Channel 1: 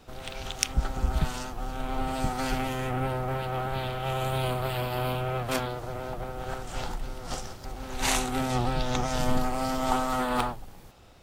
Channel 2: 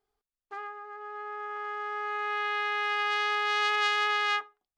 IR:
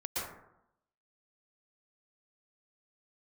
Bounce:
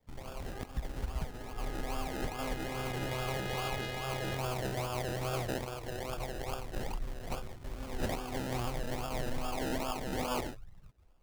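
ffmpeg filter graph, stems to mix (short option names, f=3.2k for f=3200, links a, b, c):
-filter_complex "[0:a]afwtdn=0.0141,adynamicequalizer=threshold=0.00447:dfrequency=200:dqfactor=1.5:tfrequency=200:tqfactor=1.5:attack=5:release=100:ratio=0.375:range=3:mode=cutabove:tftype=bell,acrusher=samples=31:mix=1:aa=0.000001:lfo=1:lforange=18.6:lforate=2.4,volume=-2.5dB[a];[1:a]equalizer=f=1.2k:w=1.5:g=-9,volume=-9.5dB[b];[a][b]amix=inputs=2:normalize=0,alimiter=level_in=1.5dB:limit=-24dB:level=0:latency=1:release=443,volume=-1.5dB"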